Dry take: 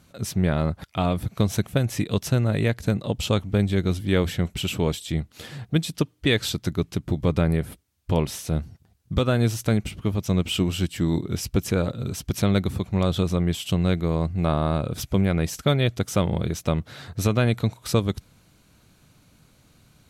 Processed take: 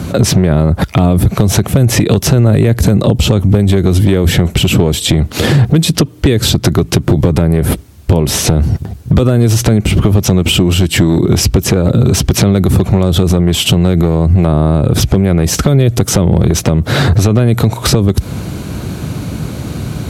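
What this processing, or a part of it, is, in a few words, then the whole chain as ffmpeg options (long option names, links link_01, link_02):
mastering chain: -filter_complex "[0:a]highpass=frequency=51:width=0.5412,highpass=frequency=51:width=1.3066,equalizer=frequency=370:width_type=o:width=0.3:gain=3.5,acrossover=split=440|7400[link_01][link_02][link_03];[link_01]acompressor=threshold=-33dB:ratio=4[link_04];[link_02]acompressor=threshold=-38dB:ratio=4[link_05];[link_03]acompressor=threshold=-48dB:ratio=4[link_06];[link_04][link_05][link_06]amix=inputs=3:normalize=0,acompressor=threshold=-34dB:ratio=3,tiltshelf=frequency=870:gain=5.5,asoftclip=type=hard:threshold=-24.5dB,alimiter=level_in=33.5dB:limit=-1dB:release=50:level=0:latency=1,volume=-1dB"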